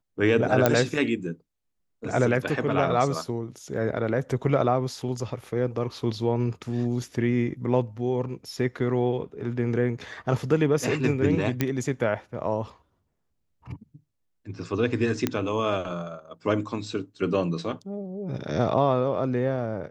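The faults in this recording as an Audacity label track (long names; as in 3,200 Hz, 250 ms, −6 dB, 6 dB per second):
0.660000	0.660000	click −5 dBFS
3.770000	3.770000	drop-out 2.1 ms
11.610000	11.610000	click −9 dBFS
15.270000	15.270000	click −9 dBFS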